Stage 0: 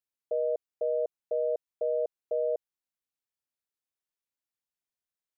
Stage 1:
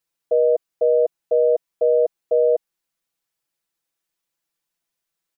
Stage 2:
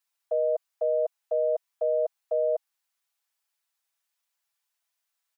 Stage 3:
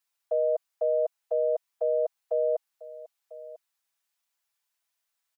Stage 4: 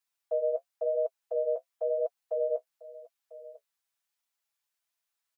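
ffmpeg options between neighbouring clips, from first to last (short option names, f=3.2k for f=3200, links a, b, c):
-af "aecho=1:1:6:0.91,volume=8.5dB"
-af "highpass=f=680:w=0.5412,highpass=f=680:w=1.3066"
-af "aecho=1:1:996:0.126"
-af "flanger=delay=7.6:depth=7.7:regen=-29:speed=0.96:shape=triangular"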